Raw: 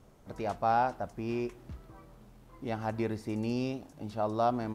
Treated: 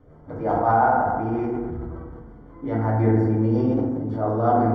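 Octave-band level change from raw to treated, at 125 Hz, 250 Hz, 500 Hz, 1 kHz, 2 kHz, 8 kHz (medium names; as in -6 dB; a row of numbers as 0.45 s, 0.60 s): +16.0 dB, +12.0 dB, +10.0 dB, +10.5 dB, +9.5 dB, under -10 dB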